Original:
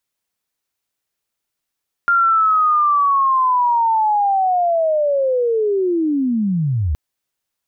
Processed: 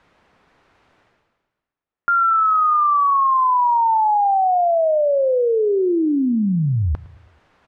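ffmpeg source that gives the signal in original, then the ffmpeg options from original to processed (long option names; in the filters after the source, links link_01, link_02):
-f lavfi -i "aevalsrc='pow(10,(-11-4.5*t/4.87)/20)*sin(2*PI*(1400*t-1333*t*t/(2*4.87)))':duration=4.87:sample_rate=44100"
-af "lowpass=1600,areverse,acompressor=mode=upward:threshold=-34dB:ratio=2.5,areverse,aecho=1:1:109|218|327|436:0.0944|0.051|0.0275|0.0149"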